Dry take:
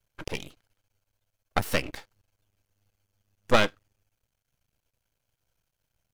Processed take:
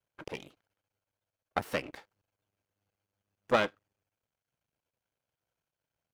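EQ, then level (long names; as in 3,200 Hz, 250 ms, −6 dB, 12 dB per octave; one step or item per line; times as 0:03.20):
high-pass filter 280 Hz 6 dB per octave
high-shelf EQ 2,700 Hz −11 dB
−2.5 dB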